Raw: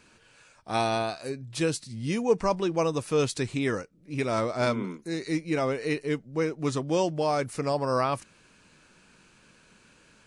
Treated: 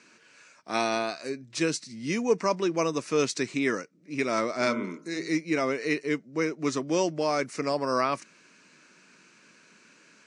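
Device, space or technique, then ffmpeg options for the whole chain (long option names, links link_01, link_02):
television speaker: -filter_complex "[0:a]asettb=1/sr,asplit=3[link_01][link_02][link_03];[link_01]atrim=end=4.544[link_04];[link_02]atrim=start=4.54:end=5.28,asetpts=PTS-STARTPTS,afade=type=in:duration=0.004:curve=qsin,afade=type=out:start_time=0.736:duration=0.004:curve=qsin,bandreject=frequency=55.05:width_type=h:width=4,bandreject=frequency=110.1:width_type=h:width=4,bandreject=frequency=165.15:width_type=h:width=4,bandreject=frequency=220.2:width_type=h:width=4,bandreject=frequency=275.25:width_type=h:width=4,bandreject=frequency=330.3:width_type=h:width=4,bandreject=frequency=385.35:width_type=h:width=4,bandreject=frequency=440.4:width_type=h:width=4,bandreject=frequency=495.45:width_type=h:width=4,bandreject=frequency=550.5:width_type=h:width=4,bandreject=frequency=605.55:width_type=h:width=4,bandreject=frequency=660.6:width_type=h:width=4,bandreject=frequency=715.65:width_type=h:width=4,bandreject=frequency=770.7:width_type=h:width=4,bandreject=frequency=825.75:width_type=h:width=4,bandreject=frequency=880.8:width_type=h:width=4,bandreject=frequency=935.85:width_type=h:width=4,bandreject=frequency=990.9:width_type=h:width=4,bandreject=frequency=1045.95:width_type=h:width=4,bandreject=frequency=1101:width_type=h:width=4,bandreject=frequency=1156.05:width_type=h:width=4,bandreject=frequency=1211.1:width_type=h:width=4,bandreject=frequency=1266.15:width_type=h:width=4,bandreject=frequency=1321.2:width_type=h:width=4,bandreject=frequency=1376.25:width_type=h:width=4,bandreject=frequency=1431.3:width_type=h:width=4,bandreject=frequency=1486.35:width_type=h:width=4,bandreject=frequency=1541.4:width_type=h:width=4[link_05];[link_03]atrim=start=5.276[link_06];[link_04][link_05]acrossfade=duration=0.004:curve1=hsin:curve2=qsin[link_07];[link_07][link_06]acrossfade=duration=0.004:curve1=qsin:curve2=hsin,highpass=frequency=180:width=0.5412,highpass=frequency=180:width=1.3066,equalizer=frequency=200:width_type=q:width=4:gain=-3,equalizer=frequency=500:width_type=q:width=4:gain=-4,equalizer=frequency=810:width_type=q:width=4:gain=-7,equalizer=frequency=2100:width_type=q:width=4:gain=4,equalizer=frequency=3300:width_type=q:width=4:gain=-5,equalizer=frequency=5800:width_type=q:width=4:gain=4,lowpass=frequency=7900:width=0.5412,lowpass=frequency=7900:width=1.3066,volume=2dB"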